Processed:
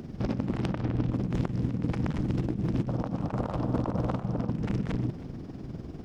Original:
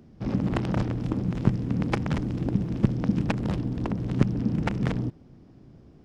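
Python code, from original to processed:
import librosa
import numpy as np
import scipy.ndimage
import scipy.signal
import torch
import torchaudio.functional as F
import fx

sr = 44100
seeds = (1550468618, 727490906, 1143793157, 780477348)

y = fx.bessel_lowpass(x, sr, hz=3600.0, order=2, at=(0.71, 1.11))
y = fx.band_shelf(y, sr, hz=840.0, db=12.0, octaves=1.7, at=(2.88, 4.5))
y = fx.over_compress(y, sr, threshold_db=-34.0, ratio=-1.0)
y = y * (1.0 - 0.59 / 2.0 + 0.59 / 2.0 * np.cos(2.0 * np.pi * 20.0 * (np.arange(len(y)) / sr)))
y = fx.echo_multitap(y, sr, ms=(124, 317), db=(-16.5, -19.0))
y = y * librosa.db_to_amplitude(6.5)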